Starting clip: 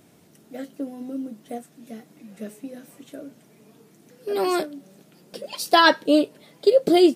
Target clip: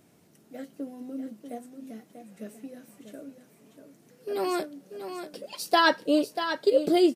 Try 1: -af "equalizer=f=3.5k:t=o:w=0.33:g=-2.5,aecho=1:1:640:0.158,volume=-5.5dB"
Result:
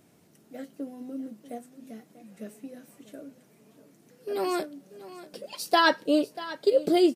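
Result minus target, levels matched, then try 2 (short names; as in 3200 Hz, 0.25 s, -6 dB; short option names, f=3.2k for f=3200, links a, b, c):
echo-to-direct -7 dB
-af "equalizer=f=3.5k:t=o:w=0.33:g=-2.5,aecho=1:1:640:0.355,volume=-5.5dB"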